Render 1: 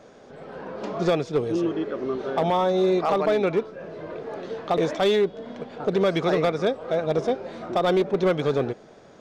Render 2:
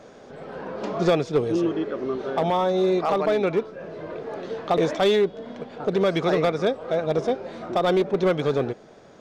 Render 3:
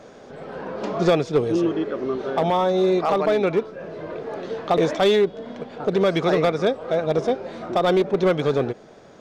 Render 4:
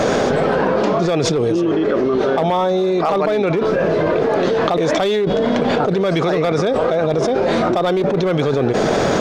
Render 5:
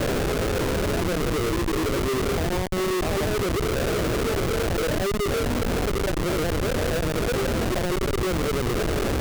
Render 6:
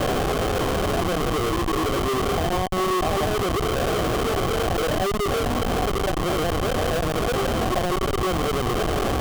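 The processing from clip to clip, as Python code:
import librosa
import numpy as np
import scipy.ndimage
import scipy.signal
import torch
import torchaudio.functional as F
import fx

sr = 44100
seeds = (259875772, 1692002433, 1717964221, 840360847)

y1 = fx.rider(x, sr, range_db=3, speed_s=2.0)
y2 = fx.end_taper(y1, sr, db_per_s=580.0)
y2 = y2 * 10.0 ** (2.0 / 20.0)
y3 = fx.env_flatten(y2, sr, amount_pct=100)
y3 = y3 * 10.0 ** (-2.5 / 20.0)
y4 = fx.ladder_bandpass(y3, sr, hz=460.0, resonance_pct=30)
y4 = fx.chorus_voices(y4, sr, voices=2, hz=0.5, base_ms=21, depth_ms=1.8, mix_pct=30)
y4 = fx.schmitt(y4, sr, flips_db=-29.5)
y4 = y4 * 10.0 ** (6.0 / 20.0)
y5 = fx.small_body(y4, sr, hz=(750.0, 1100.0, 3100.0), ring_ms=25, db=10)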